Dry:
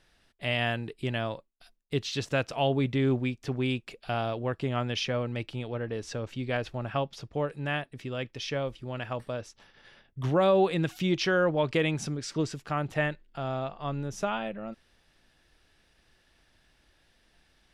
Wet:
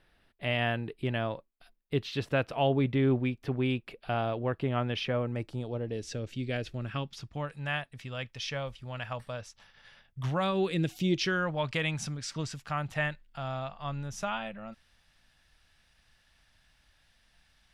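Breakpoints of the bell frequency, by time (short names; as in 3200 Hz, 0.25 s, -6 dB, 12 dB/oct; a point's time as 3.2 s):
bell -13.5 dB 1.1 oct
5.03 s 6700 Hz
6.06 s 1000 Hz
6.63 s 1000 Hz
7.6 s 340 Hz
10.3 s 340 Hz
11.03 s 1600 Hz
11.5 s 370 Hz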